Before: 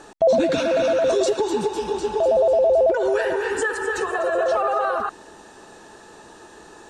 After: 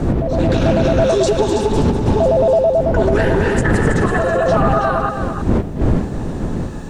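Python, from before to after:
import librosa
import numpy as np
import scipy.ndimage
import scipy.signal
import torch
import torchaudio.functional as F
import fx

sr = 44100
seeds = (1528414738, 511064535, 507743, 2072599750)

p1 = fx.dmg_wind(x, sr, seeds[0], corner_hz=240.0, level_db=-16.0)
p2 = fx.over_compress(p1, sr, threshold_db=-17.0, ratio=-1.0)
p3 = fx.quant_dither(p2, sr, seeds[1], bits=10, dither='none')
p4 = p3 + fx.echo_single(p3, sr, ms=325, db=-8.0, dry=0)
p5 = fx.doppler_dist(p4, sr, depth_ms=0.29)
y = p5 * librosa.db_to_amplitude(2.0)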